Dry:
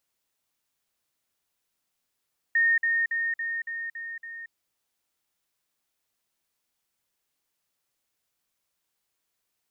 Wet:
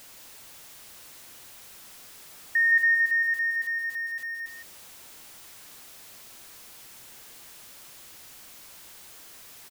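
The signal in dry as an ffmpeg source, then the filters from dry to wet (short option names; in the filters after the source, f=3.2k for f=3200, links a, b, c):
-f lavfi -i "aevalsrc='pow(10,(-18.5-3*floor(t/0.28))/20)*sin(2*PI*1840*t)*clip(min(mod(t,0.28),0.23-mod(t,0.28))/0.005,0,1)':d=1.96:s=44100"
-filter_complex "[0:a]aeval=exprs='val(0)+0.5*0.0075*sgn(val(0))':c=same,asplit=2[a][b];[b]aecho=0:1:168:0.447[c];[a][c]amix=inputs=2:normalize=0"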